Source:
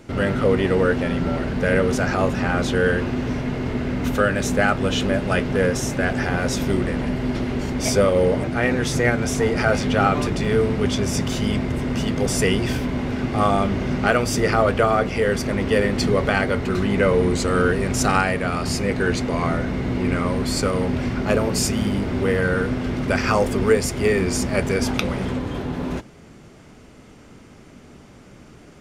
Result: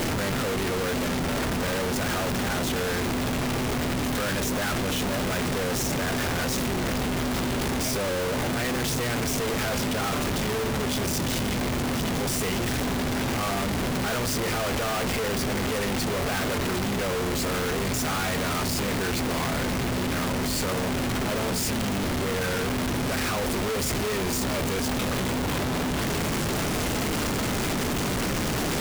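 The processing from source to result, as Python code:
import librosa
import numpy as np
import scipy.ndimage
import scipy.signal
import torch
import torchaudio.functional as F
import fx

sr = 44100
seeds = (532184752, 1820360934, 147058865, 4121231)

y = np.sign(x) * np.sqrt(np.mean(np.square(x)))
y = y * 10.0 ** (-5.5 / 20.0)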